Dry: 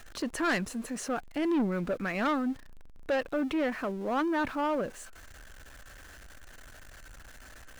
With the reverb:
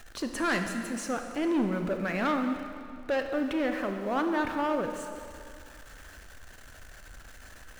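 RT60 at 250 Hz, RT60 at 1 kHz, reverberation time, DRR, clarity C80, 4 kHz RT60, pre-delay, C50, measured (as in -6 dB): 2.3 s, 2.5 s, 2.4 s, 5.0 dB, 7.0 dB, 2.0 s, 26 ms, 6.0 dB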